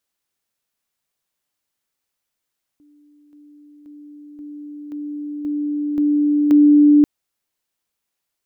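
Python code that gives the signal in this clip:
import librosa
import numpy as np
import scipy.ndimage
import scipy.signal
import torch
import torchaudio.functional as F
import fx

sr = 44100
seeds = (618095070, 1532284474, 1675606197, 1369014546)

y = fx.level_ladder(sr, hz=294.0, from_db=-49.5, step_db=6.0, steps=8, dwell_s=0.53, gap_s=0.0)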